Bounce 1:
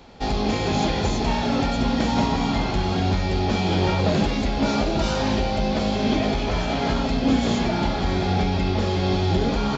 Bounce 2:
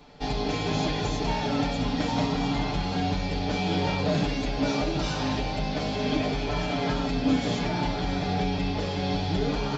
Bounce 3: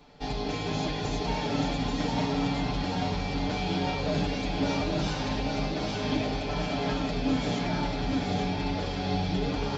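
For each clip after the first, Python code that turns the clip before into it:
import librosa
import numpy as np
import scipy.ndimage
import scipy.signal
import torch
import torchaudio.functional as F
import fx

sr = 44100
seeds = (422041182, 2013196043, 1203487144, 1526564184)

y1 = fx.notch(x, sr, hz=6900.0, q=20.0)
y1 = y1 + 0.8 * np.pad(y1, (int(6.8 * sr / 1000.0), 0))[:len(y1)]
y1 = y1 * 10.0 ** (-6.0 / 20.0)
y2 = y1 + 10.0 ** (-4.0 / 20.0) * np.pad(y1, (int(836 * sr / 1000.0), 0))[:len(y1)]
y2 = y2 * 10.0 ** (-3.5 / 20.0)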